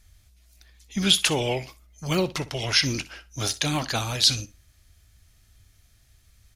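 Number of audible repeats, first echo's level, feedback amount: 2, −17.5 dB, 17%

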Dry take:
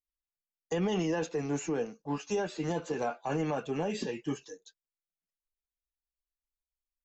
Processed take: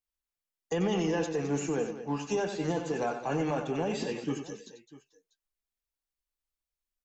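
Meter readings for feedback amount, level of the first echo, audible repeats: repeats not evenly spaced, −8.5 dB, 3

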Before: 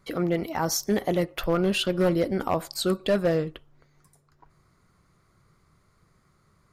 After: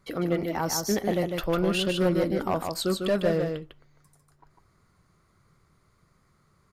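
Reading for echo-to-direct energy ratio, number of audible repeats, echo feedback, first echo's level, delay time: −5.0 dB, 1, repeats not evenly spaced, −5.0 dB, 150 ms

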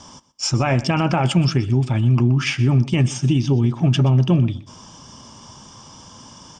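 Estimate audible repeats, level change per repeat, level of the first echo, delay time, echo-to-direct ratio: 2, −13.5 dB, −18.0 dB, 124 ms, −18.0 dB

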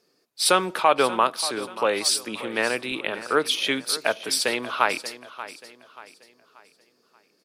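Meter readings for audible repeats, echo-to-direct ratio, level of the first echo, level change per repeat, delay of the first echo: 3, −14.5 dB, −15.0 dB, −8.0 dB, 583 ms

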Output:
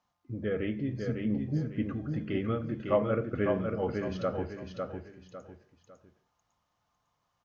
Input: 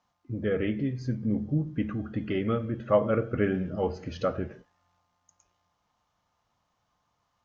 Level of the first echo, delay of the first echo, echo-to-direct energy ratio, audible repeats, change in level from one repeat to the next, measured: −4.5 dB, 552 ms, −4.0 dB, 3, −9.5 dB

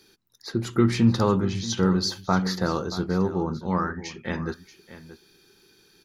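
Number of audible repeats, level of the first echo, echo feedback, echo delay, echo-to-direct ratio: 1, −15.0 dB, repeats not evenly spaced, 631 ms, −15.0 dB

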